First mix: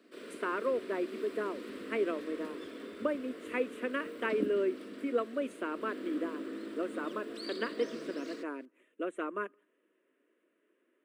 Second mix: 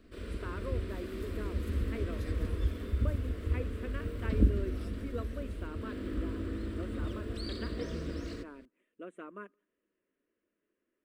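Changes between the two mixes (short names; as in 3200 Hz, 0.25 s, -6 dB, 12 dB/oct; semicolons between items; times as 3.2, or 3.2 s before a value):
speech -10.0 dB; second sound +11.0 dB; master: remove HPF 260 Hz 24 dB/oct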